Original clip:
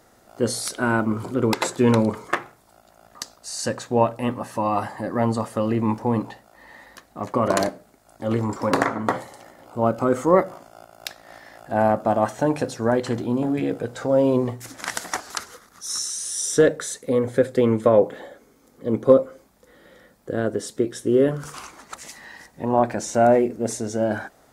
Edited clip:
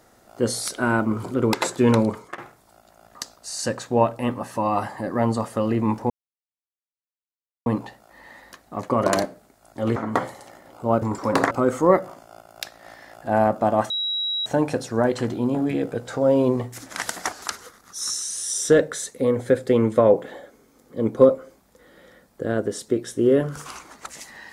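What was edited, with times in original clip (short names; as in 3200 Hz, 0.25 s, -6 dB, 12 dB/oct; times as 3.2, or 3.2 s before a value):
1.96–2.38 fade out equal-power, to -19.5 dB
6.1 insert silence 1.56 s
8.4–8.89 move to 9.95
12.34 add tone 3870 Hz -22.5 dBFS 0.56 s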